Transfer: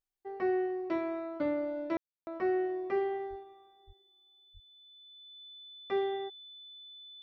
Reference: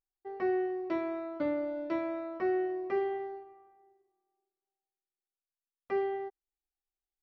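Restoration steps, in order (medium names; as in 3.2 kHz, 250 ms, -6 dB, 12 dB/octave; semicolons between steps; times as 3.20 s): band-stop 3.5 kHz, Q 30; de-plosive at 3.29/3.86/4.53 s; room tone fill 1.97–2.27 s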